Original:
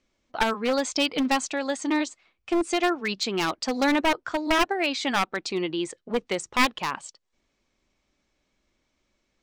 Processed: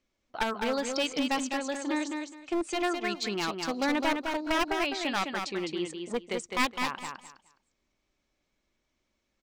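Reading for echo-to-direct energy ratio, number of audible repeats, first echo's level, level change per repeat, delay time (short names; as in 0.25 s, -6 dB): -5.0 dB, 3, -5.0 dB, -13.5 dB, 0.208 s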